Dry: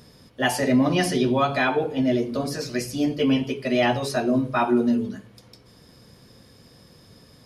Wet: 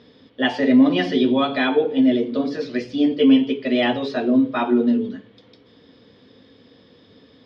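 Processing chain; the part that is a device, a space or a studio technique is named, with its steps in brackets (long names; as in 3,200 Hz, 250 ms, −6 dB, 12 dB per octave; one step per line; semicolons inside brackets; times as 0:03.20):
guitar cabinet (loudspeaker in its box 97–4,300 Hz, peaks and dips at 140 Hz −8 dB, 270 Hz +10 dB, 460 Hz +8 dB, 1,900 Hz +4 dB, 3,400 Hz +10 dB)
level −2 dB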